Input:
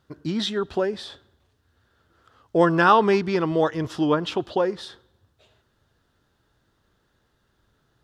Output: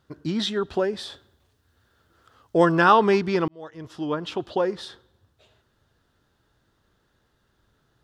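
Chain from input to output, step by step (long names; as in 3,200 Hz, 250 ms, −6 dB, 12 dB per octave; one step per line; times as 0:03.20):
0:00.97–0:02.72: high-shelf EQ 7,000 Hz +7 dB
0:03.48–0:04.77: fade in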